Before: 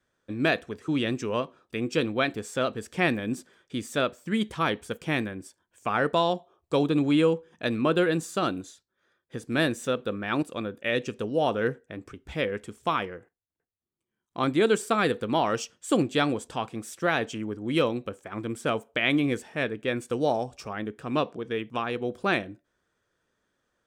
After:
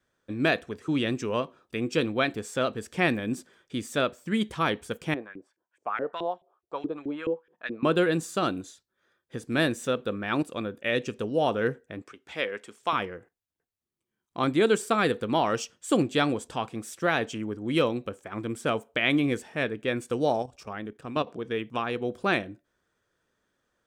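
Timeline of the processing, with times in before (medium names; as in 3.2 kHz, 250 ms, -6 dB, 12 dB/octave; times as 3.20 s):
5.14–7.83 s: LFO band-pass saw up 4.7 Hz 290–2400 Hz
12.02–12.93 s: frequency weighting A
20.42–21.27 s: level held to a coarse grid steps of 12 dB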